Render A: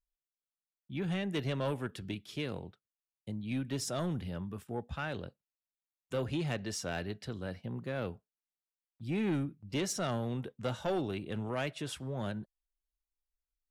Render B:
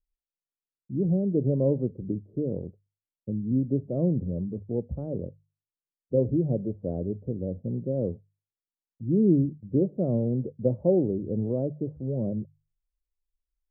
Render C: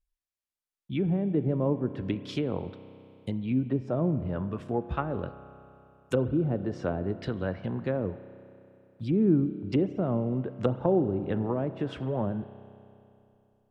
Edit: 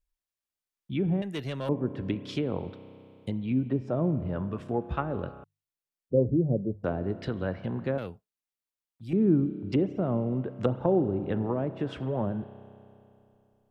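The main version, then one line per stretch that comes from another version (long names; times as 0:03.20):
C
0:01.22–0:01.69: punch in from A
0:05.44–0:06.84: punch in from B
0:07.98–0:09.13: punch in from A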